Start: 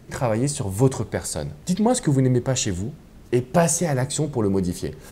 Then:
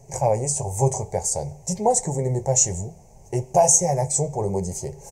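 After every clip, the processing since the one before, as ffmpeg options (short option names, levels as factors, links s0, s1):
-af "flanger=delay=7.3:depth=6.1:regen=-47:speed=0.6:shape=sinusoidal,firequalizer=gain_entry='entry(150,0);entry(280,-17);entry(410,1);entry(840,9);entry(1300,-22);entry(2200,-4);entry(3500,-19);entry(6200,12);entry(11000,-2)':delay=0.05:min_phase=1,volume=1.33"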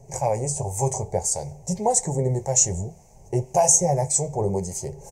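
-filter_complex "[0:a]acrossover=split=920[s0][s1];[s0]aeval=exprs='val(0)*(1-0.5/2+0.5/2*cos(2*PI*1.8*n/s))':c=same[s2];[s1]aeval=exprs='val(0)*(1-0.5/2-0.5/2*cos(2*PI*1.8*n/s))':c=same[s3];[s2][s3]amix=inputs=2:normalize=0,volume=1.19"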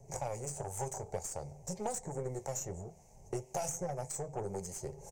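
-filter_complex "[0:a]acrossover=split=310|2200[s0][s1][s2];[s0]acompressor=threshold=0.0126:ratio=4[s3];[s1]acompressor=threshold=0.0251:ratio=4[s4];[s2]acompressor=threshold=0.0158:ratio=4[s5];[s3][s4][s5]amix=inputs=3:normalize=0,aeval=exprs='0.133*(cos(1*acos(clip(val(0)/0.133,-1,1)))-cos(1*PI/2))+0.00841*(cos(6*acos(clip(val(0)/0.133,-1,1)))-cos(6*PI/2))+0.00335*(cos(7*acos(clip(val(0)/0.133,-1,1)))-cos(7*PI/2))':c=same,volume=0.501"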